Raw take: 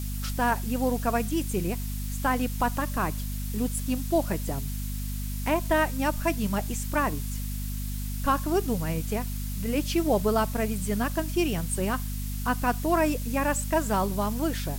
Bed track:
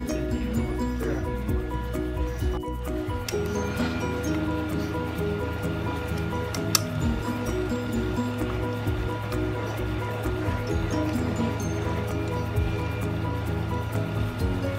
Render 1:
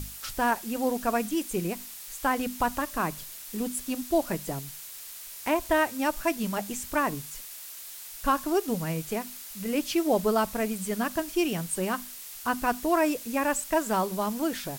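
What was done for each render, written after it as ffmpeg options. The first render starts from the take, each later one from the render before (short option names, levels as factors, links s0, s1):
-af "bandreject=f=50:t=h:w=6,bandreject=f=100:t=h:w=6,bandreject=f=150:t=h:w=6,bandreject=f=200:t=h:w=6,bandreject=f=250:t=h:w=6"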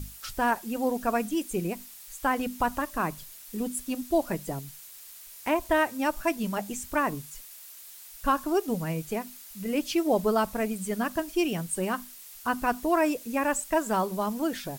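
-af "afftdn=nr=6:nf=-43"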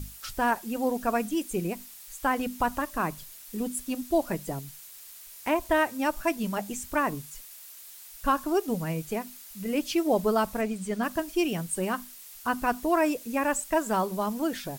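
-filter_complex "[0:a]asettb=1/sr,asplit=3[s0][s1][s2];[s0]atrim=end=10.614[s3];[s1]atrim=start=10.61:end=11.03,asetpts=PTS-STARTPTS,afade=t=in:d=0.004:c=qsin,afade=t=out:st=0.416:d=0.004:c=qsin,equalizer=f=13000:w=1:g=-12.5[s4];[s2]atrim=start=11.026[s5];[s3][s4]acrossfade=d=0.004:c1=hsin:c2=qsin[s6];[s6][s5]acrossfade=d=0.004:c1=qsin:c2=hsin"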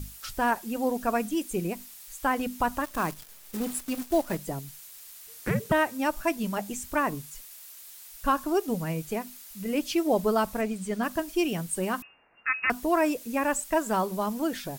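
-filter_complex "[0:a]asettb=1/sr,asplit=3[s0][s1][s2];[s0]atrim=end=2.844[s3];[s1]atrim=start=2.84:end=4.37,asetpts=PTS-STARTPTS,afade=t=in:d=0.004:c=qsin,afade=t=out:st=1.526:d=0.004:c=qsin,acrusher=bits=7:dc=4:mix=0:aa=0.000001[s4];[s2]atrim=start=4.366[s5];[s3][s4]acrossfade=d=0.004:c1=hsin:c2=qsin[s6];[s6][s5]acrossfade=d=0.004:c1=qsin:c2=hsin,asettb=1/sr,asplit=3[s7][s8][s9];[s7]atrim=end=5.274[s10];[s8]atrim=start=5.27:end=5.72,asetpts=PTS-STARTPTS,afade=t=in:d=0.004:c=qsin,afade=t=out:st=0.446:d=0.004:c=qsin,afreqshift=-470[s11];[s9]atrim=start=5.716[s12];[s10][s11]acrossfade=d=0.004:c1=hsin:c2=qsin[s13];[s13][s12]acrossfade=d=0.004:c1=qsin:c2=hsin,asettb=1/sr,asplit=3[s14][s15][s16];[s14]atrim=end=12.024[s17];[s15]atrim=start=12.02:end=12.7,asetpts=PTS-STARTPTS,afade=t=in:d=0.004:c=qsin,afade=t=out:st=0.676:d=0.004:c=qsin,lowpass=f=2400:t=q:w=0.5098,lowpass=f=2400:t=q:w=0.6013,lowpass=f=2400:t=q:w=0.9,lowpass=f=2400:t=q:w=2.563,afreqshift=-2800[s18];[s16]atrim=start=12.696[s19];[s17][s18]acrossfade=d=0.004:c1=hsin:c2=qsin[s20];[s20][s19]acrossfade=d=0.004:c1=qsin:c2=hsin"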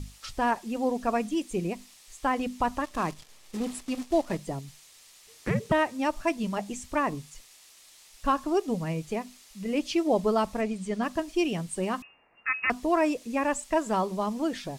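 -af "lowpass=7000,equalizer=f=1500:w=7.3:g=-7.5"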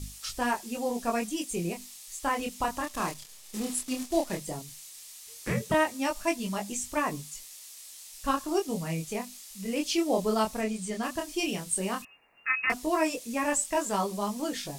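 -af "flanger=delay=20:depth=7.7:speed=0.14,crystalizer=i=3:c=0"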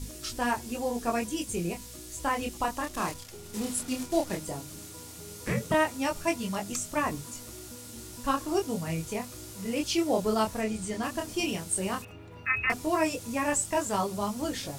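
-filter_complex "[1:a]volume=0.106[s0];[0:a][s0]amix=inputs=2:normalize=0"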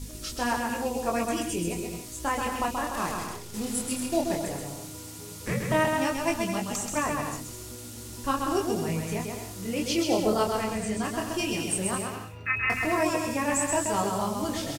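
-af "aecho=1:1:130|214.5|269.4|305.1|328.3:0.631|0.398|0.251|0.158|0.1"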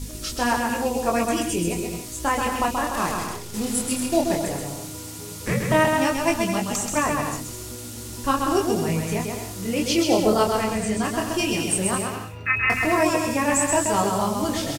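-af "volume=1.88"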